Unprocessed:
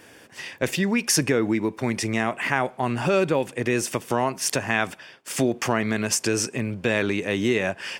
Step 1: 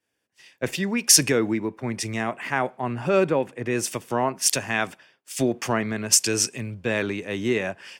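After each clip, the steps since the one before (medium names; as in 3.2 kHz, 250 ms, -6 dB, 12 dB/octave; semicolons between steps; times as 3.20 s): three bands expanded up and down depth 100%; trim -1.5 dB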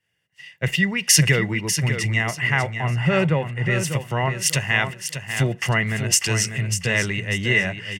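resonant low shelf 200 Hz +8 dB, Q 3; small resonant body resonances 2/2.8 kHz, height 17 dB, ringing for 20 ms; on a send: feedback delay 595 ms, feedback 25%, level -8.5 dB; on the sum: trim -1 dB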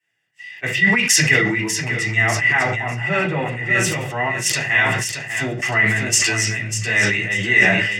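bass shelf 270 Hz -6 dB; reverberation RT60 0.40 s, pre-delay 3 ms, DRR -6.5 dB; decay stretcher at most 36 dB/s; trim -4.5 dB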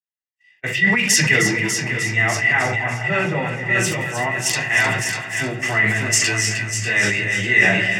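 expander -24 dBFS; on a send: two-band feedback delay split 780 Hz, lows 193 ms, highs 309 ms, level -9.5 dB; on the sum: trim -1 dB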